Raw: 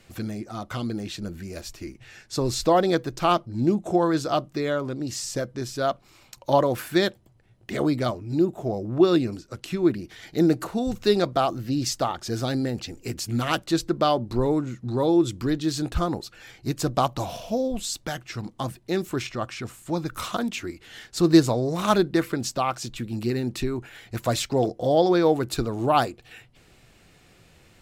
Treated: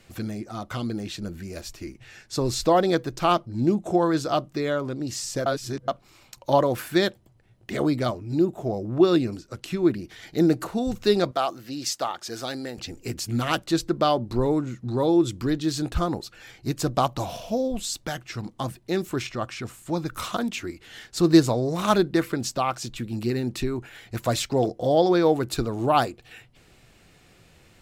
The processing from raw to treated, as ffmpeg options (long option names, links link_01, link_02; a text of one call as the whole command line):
ffmpeg -i in.wav -filter_complex "[0:a]asettb=1/sr,asplit=3[link_01][link_02][link_03];[link_01]atrim=end=11.314[link_04];[link_02]atrim=start=11.31:end=12.78,asetpts=PTS-STARTPTS,afade=type=in:duration=0.004:curve=qsin,afade=type=out:start_time=1.466:duration=0.004:curve=qsin,highpass=frequency=640:poles=1[link_05];[link_03]atrim=start=12.776[link_06];[link_04][link_05]acrossfade=duration=0.004:curve1=hsin:curve2=qsin[link_07];[link_07][link_06]acrossfade=duration=0.004:curve1=qsin:curve2=hsin,asplit=3[link_08][link_09][link_10];[link_08]atrim=end=5.462[link_11];[link_09]atrim=start=5.458:end=5.882,asetpts=PTS-STARTPTS,areverse[link_12];[link_10]atrim=start=5.878[link_13];[link_11][link_12]acrossfade=duration=0.004:curve1=hsin:curve2=hsin[link_14];[link_14][link_13]acrossfade=duration=0.004:curve1=hsin:curve2=hsin" out.wav